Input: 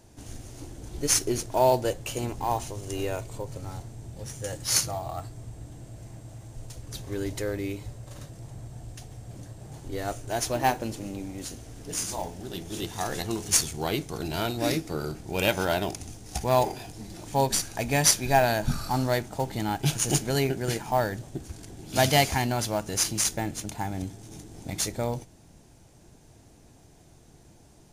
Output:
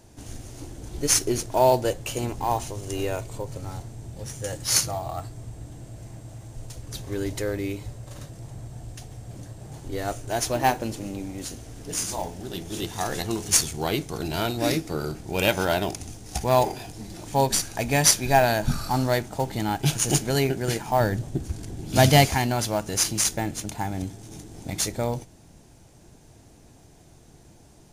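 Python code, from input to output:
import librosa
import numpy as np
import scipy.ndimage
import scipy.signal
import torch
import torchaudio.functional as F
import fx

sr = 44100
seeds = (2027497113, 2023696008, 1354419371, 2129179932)

y = fx.low_shelf(x, sr, hz=300.0, db=7.5, at=(21.0, 22.27))
y = y * librosa.db_to_amplitude(2.5)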